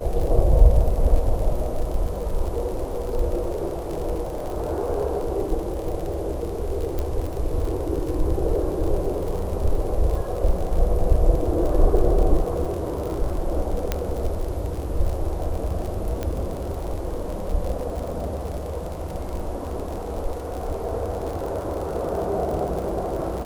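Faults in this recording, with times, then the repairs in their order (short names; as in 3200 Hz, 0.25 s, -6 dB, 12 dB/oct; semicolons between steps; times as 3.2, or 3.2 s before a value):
crackle 55/s -28 dBFS
6.99 pop -14 dBFS
13.92 pop -8 dBFS
16.23 pop -14 dBFS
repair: de-click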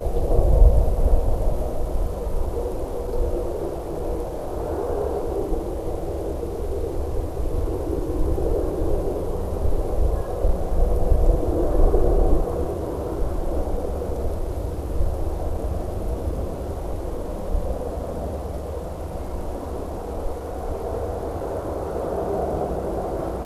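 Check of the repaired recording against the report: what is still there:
none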